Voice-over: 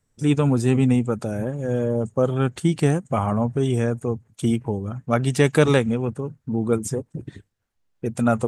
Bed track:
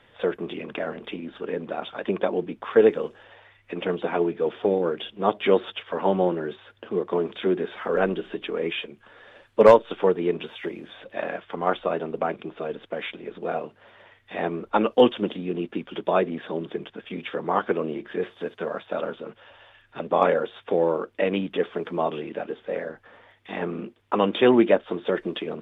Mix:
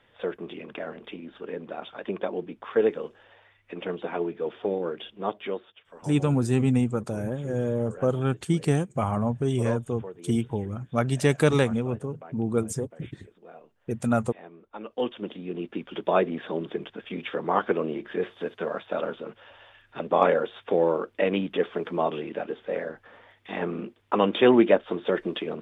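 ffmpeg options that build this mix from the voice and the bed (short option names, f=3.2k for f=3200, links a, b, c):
-filter_complex "[0:a]adelay=5850,volume=-4dB[a];[1:a]volume=13.5dB,afade=t=out:st=5.17:d=0.51:silence=0.199526,afade=t=in:st=14.76:d=1.41:silence=0.112202[b];[a][b]amix=inputs=2:normalize=0"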